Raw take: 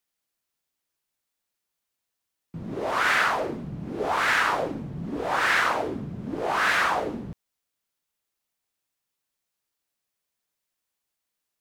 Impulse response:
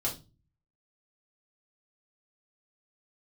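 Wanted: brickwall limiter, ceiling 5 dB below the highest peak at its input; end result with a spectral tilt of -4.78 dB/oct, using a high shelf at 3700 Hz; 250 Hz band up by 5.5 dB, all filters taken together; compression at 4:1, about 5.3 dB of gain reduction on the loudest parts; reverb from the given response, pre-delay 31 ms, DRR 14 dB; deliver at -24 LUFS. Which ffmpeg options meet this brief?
-filter_complex "[0:a]equalizer=f=250:t=o:g=7,highshelf=f=3.7k:g=6,acompressor=threshold=-23dB:ratio=4,alimiter=limit=-18.5dB:level=0:latency=1,asplit=2[a][b];[1:a]atrim=start_sample=2205,adelay=31[c];[b][c]afir=irnorm=-1:irlink=0,volume=-18.5dB[d];[a][d]amix=inputs=2:normalize=0,volume=4dB"

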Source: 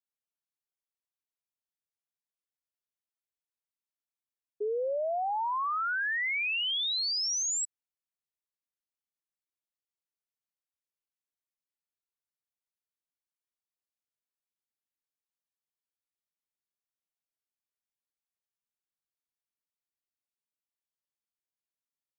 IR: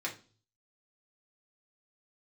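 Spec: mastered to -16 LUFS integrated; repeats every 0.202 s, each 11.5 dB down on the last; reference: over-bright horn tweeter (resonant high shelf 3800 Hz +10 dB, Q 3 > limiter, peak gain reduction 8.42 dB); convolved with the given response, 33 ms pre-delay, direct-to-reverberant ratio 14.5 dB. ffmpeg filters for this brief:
-filter_complex "[0:a]aecho=1:1:202|404|606:0.266|0.0718|0.0194,asplit=2[a][b];[1:a]atrim=start_sample=2205,adelay=33[c];[b][c]afir=irnorm=-1:irlink=0,volume=-18dB[d];[a][d]amix=inputs=2:normalize=0,highshelf=f=3.8k:t=q:w=3:g=10,volume=8dB,alimiter=limit=-8.5dB:level=0:latency=1"

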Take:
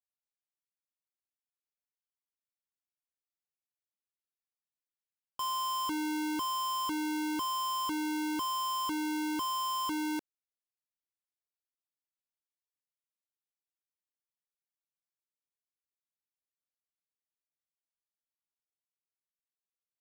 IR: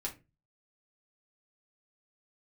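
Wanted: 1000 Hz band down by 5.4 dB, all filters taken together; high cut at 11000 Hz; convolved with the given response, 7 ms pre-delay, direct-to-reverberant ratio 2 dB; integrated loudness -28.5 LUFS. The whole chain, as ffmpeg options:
-filter_complex "[0:a]lowpass=11k,equalizer=f=1k:t=o:g=-5.5,asplit=2[a][b];[1:a]atrim=start_sample=2205,adelay=7[c];[b][c]afir=irnorm=-1:irlink=0,volume=-2.5dB[d];[a][d]amix=inputs=2:normalize=0,volume=4.5dB"

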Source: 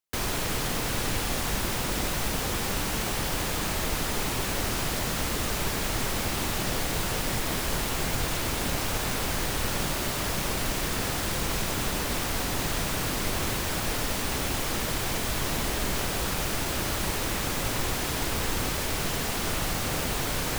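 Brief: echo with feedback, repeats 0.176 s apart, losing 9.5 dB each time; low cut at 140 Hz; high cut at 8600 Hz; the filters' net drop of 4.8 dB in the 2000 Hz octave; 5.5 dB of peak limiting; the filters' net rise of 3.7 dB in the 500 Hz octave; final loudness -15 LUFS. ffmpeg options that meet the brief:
-af "highpass=140,lowpass=8.6k,equalizer=f=500:t=o:g=5,equalizer=f=2k:t=o:g=-6.5,alimiter=limit=-22dB:level=0:latency=1,aecho=1:1:176|352|528|704:0.335|0.111|0.0365|0.012,volume=16dB"

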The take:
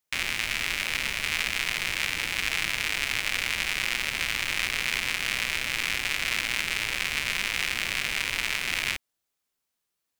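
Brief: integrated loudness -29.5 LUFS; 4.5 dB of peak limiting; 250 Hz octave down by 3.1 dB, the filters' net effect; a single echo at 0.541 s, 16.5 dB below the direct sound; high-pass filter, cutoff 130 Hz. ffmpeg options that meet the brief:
-af "highpass=130,equalizer=f=250:t=o:g=-3.5,alimiter=limit=-13dB:level=0:latency=1,aecho=1:1:541:0.15,volume=-1dB"

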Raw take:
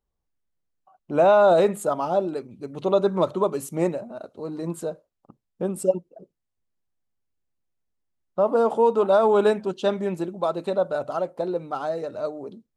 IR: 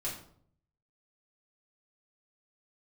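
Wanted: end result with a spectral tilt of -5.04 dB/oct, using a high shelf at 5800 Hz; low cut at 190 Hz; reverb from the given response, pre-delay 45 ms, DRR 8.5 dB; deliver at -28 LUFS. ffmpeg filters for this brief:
-filter_complex "[0:a]highpass=190,highshelf=f=5.8k:g=-6,asplit=2[a][b];[1:a]atrim=start_sample=2205,adelay=45[c];[b][c]afir=irnorm=-1:irlink=0,volume=-10.5dB[d];[a][d]amix=inputs=2:normalize=0,volume=-5.5dB"

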